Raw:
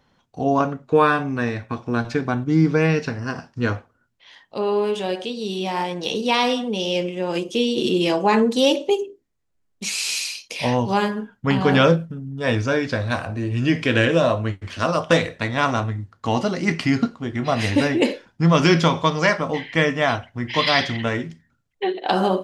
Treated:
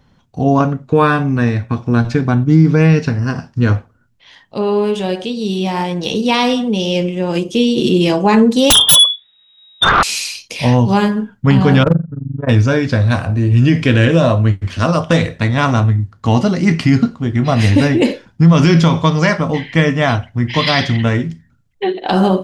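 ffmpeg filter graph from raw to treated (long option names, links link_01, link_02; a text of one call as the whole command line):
ffmpeg -i in.wav -filter_complex "[0:a]asettb=1/sr,asplit=3[link_01][link_02][link_03];[link_01]atrim=end=8.704[link_04];[link_02]atrim=start=8.7:end=10.03,asetpts=PTS-STARTPTS,afade=type=in:duration=0.004:curve=qsin,afade=type=out:start_time=1.326:duration=0.004:curve=qsin,lowpass=frequency=3200:width_type=q:width=0.5098,lowpass=frequency=3200:width_type=q:width=0.6013,lowpass=frequency=3200:width_type=q:width=0.9,lowpass=frequency=3200:width_type=q:width=2.563,afreqshift=-3800,aeval=exprs='0.376*sin(PI/2*5.01*val(0)/0.376)':channel_layout=same[link_05];[link_03]atrim=start=10.026[link_06];[link_04][link_05]acrossfade=duration=0.004:curve1=hsin:curve2=qsin[link_07];[link_07][link_06]acrossfade=duration=0.004:curve1=qsin:curve2=hsin,asettb=1/sr,asplit=3[link_08][link_09][link_10];[link_08]atrim=end=11.834[link_11];[link_09]atrim=start=11.83:end=12.49,asetpts=PTS-STARTPTS,afade=type=in:duration=0.004:curve=qsin,afade=type=out:start_time=0.656:duration=0.004:curve=qsin,lowpass=frequency=1500:width=0.5412,lowpass=frequency=1500:width=1.3066,tremolo=f=23:d=0.947,volume=12dB,asoftclip=hard,volume=-12dB[link_12];[link_10]atrim=start=12.486[link_13];[link_11][link_12]acrossfade=duration=0.004:curve1=hsin:curve2=qsin[link_14];[link_14][link_13]acrossfade=duration=0.004:curve1=qsin:curve2=hsin,bass=frequency=250:gain=10,treble=frequency=4000:gain=1,alimiter=level_in=5dB:limit=-1dB:release=50:level=0:latency=1,volume=-1dB" out.wav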